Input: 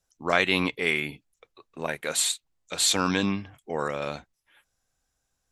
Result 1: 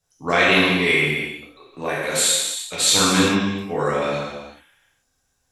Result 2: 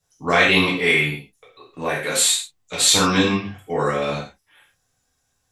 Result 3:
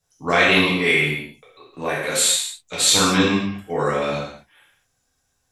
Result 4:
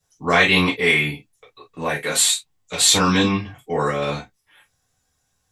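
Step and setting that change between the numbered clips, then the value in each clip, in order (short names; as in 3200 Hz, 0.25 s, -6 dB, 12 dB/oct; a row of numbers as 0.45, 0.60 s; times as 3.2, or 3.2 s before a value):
non-linear reverb, gate: 450, 160, 270, 80 ms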